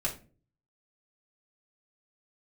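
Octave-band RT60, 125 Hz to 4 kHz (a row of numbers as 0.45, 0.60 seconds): 0.65, 0.55, 0.45, 0.30, 0.30, 0.25 seconds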